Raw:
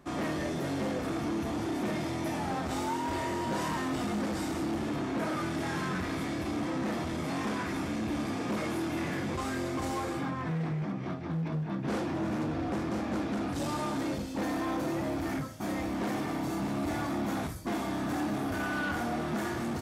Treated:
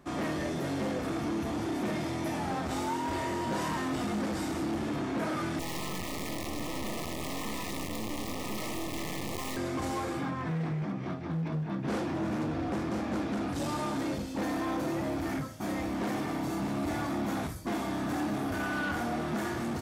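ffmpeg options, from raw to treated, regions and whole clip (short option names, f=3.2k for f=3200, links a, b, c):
-filter_complex "[0:a]asettb=1/sr,asplit=3[a][b][c];[a]atrim=end=5.594[d];[b]atrim=start=5.59:end=9.57,asetpts=PTS-STARTPTS,afade=t=in:d=0.004:c=qsin,afade=t=out:st=3.976:d=0.004:c=qsin,acrusher=bits=3:dc=4:mix=0:aa=0.000001,asuperstop=centerf=1500:order=20:qfactor=3.5[e];[c]atrim=start=9.566[f];[d][e]acrossfade=d=0.004:c1=hsin:c2=qsin[g];[g][f]acrossfade=d=0.004:c1=qsin:c2=hsin"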